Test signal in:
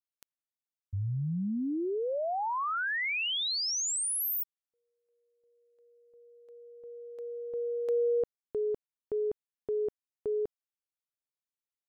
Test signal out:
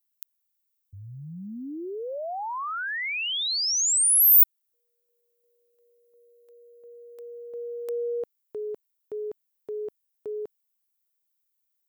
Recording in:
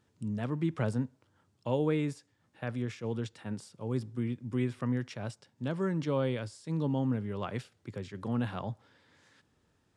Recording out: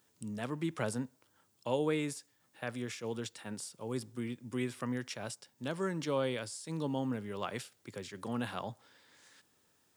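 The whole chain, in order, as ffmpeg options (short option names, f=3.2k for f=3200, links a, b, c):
-af "aemphasis=mode=production:type=bsi"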